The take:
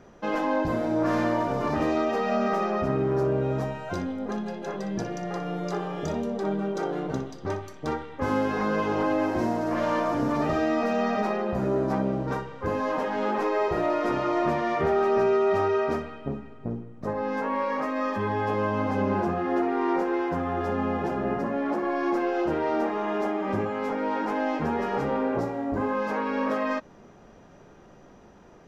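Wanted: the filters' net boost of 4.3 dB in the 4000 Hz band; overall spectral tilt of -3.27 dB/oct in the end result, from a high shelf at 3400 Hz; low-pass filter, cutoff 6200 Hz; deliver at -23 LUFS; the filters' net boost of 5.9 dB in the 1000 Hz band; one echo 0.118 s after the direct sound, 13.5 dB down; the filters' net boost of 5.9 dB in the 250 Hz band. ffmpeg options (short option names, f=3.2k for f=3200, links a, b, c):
-af "lowpass=6.2k,equalizer=f=250:t=o:g=7,equalizer=f=1k:t=o:g=6.5,highshelf=f=3.4k:g=3.5,equalizer=f=4k:t=o:g=3.5,aecho=1:1:118:0.211,volume=-1dB"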